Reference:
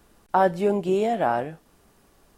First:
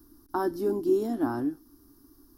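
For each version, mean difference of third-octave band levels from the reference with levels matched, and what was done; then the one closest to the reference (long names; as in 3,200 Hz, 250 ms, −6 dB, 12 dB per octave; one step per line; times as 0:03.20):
7.0 dB: drawn EQ curve 120 Hz 0 dB, 180 Hz −17 dB, 290 Hz +15 dB, 540 Hz −21 dB, 1,100 Hz −6 dB, 1,600 Hz −10 dB, 2,400 Hz −26 dB, 5,300 Hz +2 dB, 7,700 Hz −12 dB, 12,000 Hz +8 dB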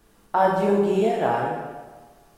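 4.5 dB: dense smooth reverb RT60 1.3 s, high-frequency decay 0.85×, DRR −2.5 dB
level −2.5 dB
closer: second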